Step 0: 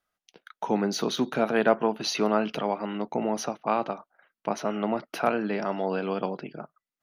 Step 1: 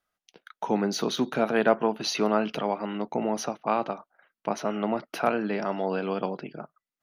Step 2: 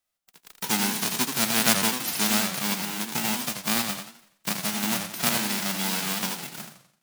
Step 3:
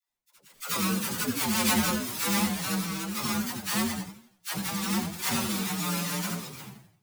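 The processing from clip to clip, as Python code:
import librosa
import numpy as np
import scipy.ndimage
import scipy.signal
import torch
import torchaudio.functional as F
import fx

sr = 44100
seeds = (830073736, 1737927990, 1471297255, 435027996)

y1 = x
y2 = fx.envelope_flatten(y1, sr, power=0.1)
y2 = fx.echo_warbled(y2, sr, ms=84, feedback_pct=40, rate_hz=2.8, cents=219, wet_db=-6.5)
y3 = fx.partial_stretch(y2, sr, pct=128)
y3 = fx.dispersion(y3, sr, late='lows', ms=93.0, hz=560.0)
y3 = y3 * librosa.db_to_amplitude(3.0)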